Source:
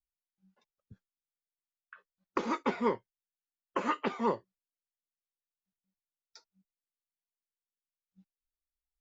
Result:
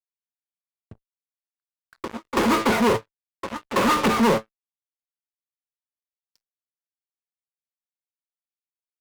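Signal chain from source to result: local Wiener filter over 9 samples; de-hum 150.8 Hz, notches 9; waveshaping leveller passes 3; feedback comb 110 Hz, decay 0.3 s, harmonics all, mix 60%; on a send: reverse echo 330 ms -22 dB; on the sum: crossover distortion -58.5 dBFS; high-pass sweep 67 Hz -> 510 Hz, 3.22–5.91 s; in parallel at -11 dB: fuzz box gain 48 dB, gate -56 dBFS; on the sum: endings held to a fixed fall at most 490 dB/s; trim +2 dB

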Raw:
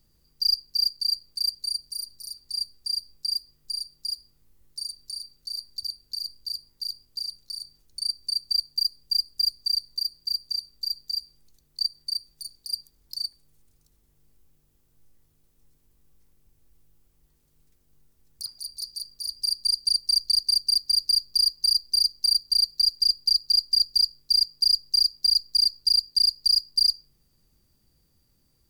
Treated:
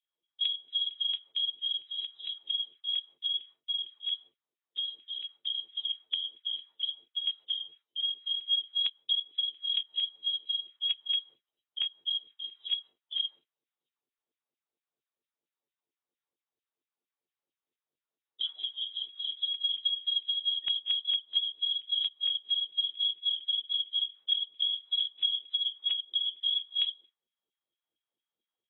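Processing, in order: knee-point frequency compression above 1.6 kHz 1.5:1; low-pass 5.5 kHz 24 dB/octave; LFO high-pass saw down 4.4 Hz 320–3100 Hz; gate with hold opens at -45 dBFS; compression 16:1, threshold -27 dBFS, peak gain reduction 16 dB; AAC 16 kbps 22.05 kHz

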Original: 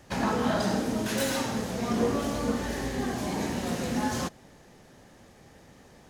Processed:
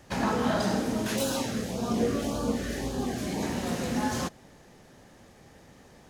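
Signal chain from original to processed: 1.16–3.43 s: LFO notch sine 1.8 Hz 850–2100 Hz

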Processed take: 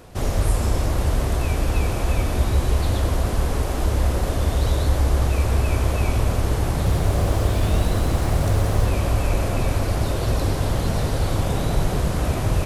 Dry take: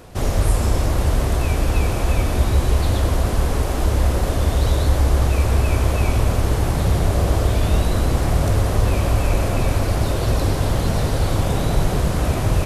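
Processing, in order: 6.68–8.86 s: bit-crushed delay 180 ms, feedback 55%, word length 6-bit, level -11 dB; trim -2.5 dB

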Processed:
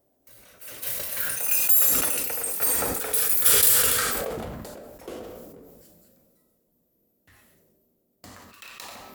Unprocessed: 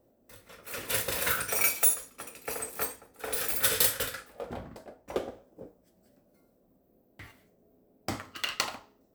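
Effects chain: companding laws mixed up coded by mu; Doppler pass-by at 2.90 s, 29 m/s, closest 26 m; treble shelf 6.2 kHz +11.5 dB; on a send at -18 dB: reverberation RT60 0.50 s, pre-delay 75 ms; on the sum: decay stretcher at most 23 dB/s; trim -2 dB

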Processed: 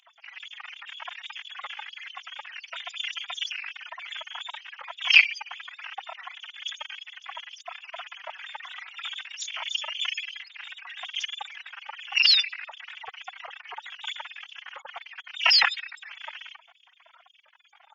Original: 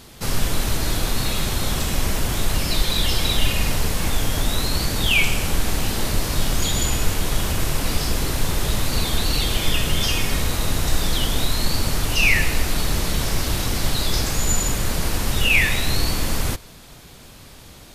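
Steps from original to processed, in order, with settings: formants replaced by sine waves; formant-preserving pitch shift +12 st; resonant low shelf 540 Hz -13.5 dB, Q 3; trim -11.5 dB

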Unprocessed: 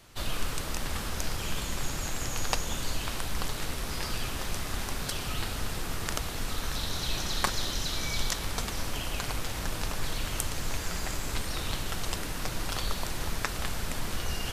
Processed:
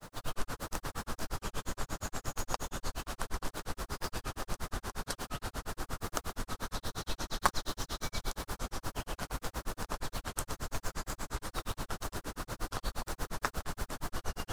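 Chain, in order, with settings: added noise pink -45 dBFS; tone controls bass -3 dB, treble +4 dB; granulator 99 ms, grains 8.5 per s, spray 17 ms, pitch spread up and down by 0 st; resonant high shelf 1.8 kHz -6.5 dB, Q 1.5; trim +1 dB

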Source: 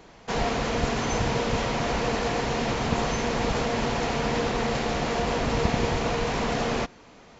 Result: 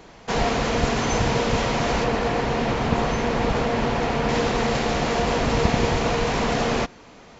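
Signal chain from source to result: 2.04–4.29 s: treble shelf 4.8 kHz -11 dB; trim +4 dB

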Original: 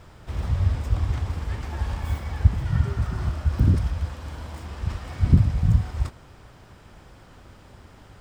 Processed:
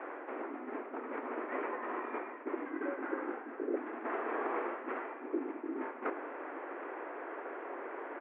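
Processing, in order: reverse; compression 12:1, threshold -33 dBFS, peak gain reduction 24.5 dB; reverse; distance through air 370 m; delay 767 ms -15 dB; mistuned SSB +160 Hz 180–2200 Hz; trim +11 dB

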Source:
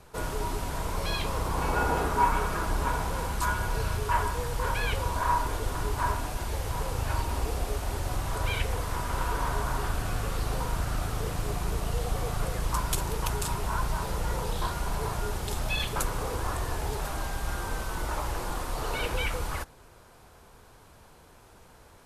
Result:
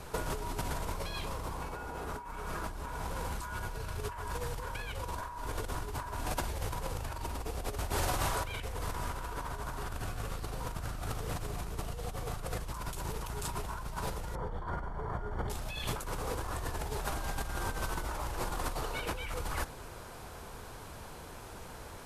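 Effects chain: 7.92–8.45 s: bass shelf 320 Hz -8 dB; compressor with a negative ratio -37 dBFS, ratio -1; 14.35–15.50 s: Savitzky-Golay filter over 41 samples

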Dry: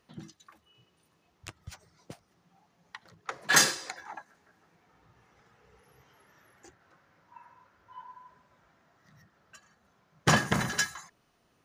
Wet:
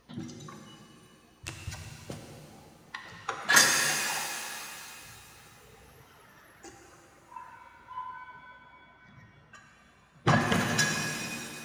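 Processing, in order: coarse spectral quantiser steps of 15 dB; 8.03–10.41 s: low-pass 1.7 kHz 6 dB/octave; in parallel at +1 dB: compression, threshold -43 dBFS, peak gain reduction 24.5 dB; on the sum: hum 60 Hz, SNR 30 dB; reverb removal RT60 2 s; pitch-shifted reverb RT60 2.8 s, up +7 st, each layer -8 dB, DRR 1 dB

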